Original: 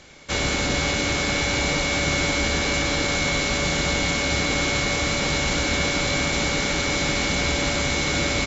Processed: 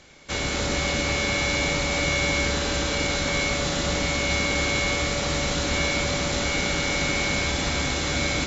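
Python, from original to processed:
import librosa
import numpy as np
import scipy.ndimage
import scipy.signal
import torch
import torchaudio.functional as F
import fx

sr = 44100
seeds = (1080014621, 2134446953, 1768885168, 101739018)

y = x + 10.0 ** (-4.0 / 20.0) * np.pad(x, (int(250 * sr / 1000.0), 0))[:len(x)]
y = y * 10.0 ** (-3.5 / 20.0)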